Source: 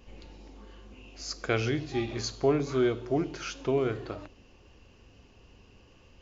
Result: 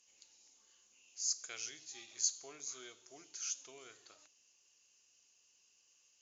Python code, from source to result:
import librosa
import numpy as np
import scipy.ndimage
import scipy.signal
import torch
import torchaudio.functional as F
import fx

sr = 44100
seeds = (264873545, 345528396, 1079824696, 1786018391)

y = fx.bandpass_q(x, sr, hz=6700.0, q=5.9)
y = F.gain(torch.from_numpy(y), 9.5).numpy()